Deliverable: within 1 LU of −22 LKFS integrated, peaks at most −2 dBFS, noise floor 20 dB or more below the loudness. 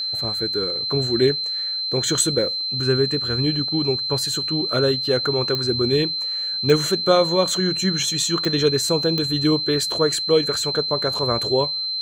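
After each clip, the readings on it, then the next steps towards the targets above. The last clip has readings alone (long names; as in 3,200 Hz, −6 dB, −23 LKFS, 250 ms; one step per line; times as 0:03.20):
number of clicks 4; interfering tone 4,100 Hz; level of the tone −23 dBFS; integrated loudness −20.0 LKFS; sample peak −3.0 dBFS; target loudness −22.0 LKFS
→ click removal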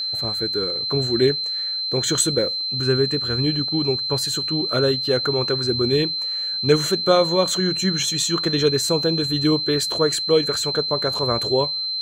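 number of clicks 0; interfering tone 4,100 Hz; level of the tone −23 dBFS
→ notch filter 4,100 Hz, Q 30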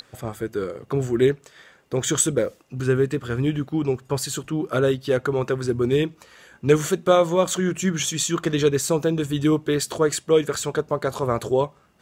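interfering tone none found; integrated loudness −23.0 LKFS; sample peak −4.0 dBFS; target loudness −22.0 LKFS
→ level +1 dB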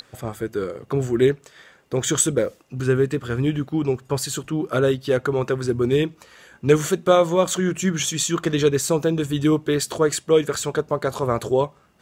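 integrated loudness −22.0 LKFS; sample peak −3.0 dBFS; background noise floor −56 dBFS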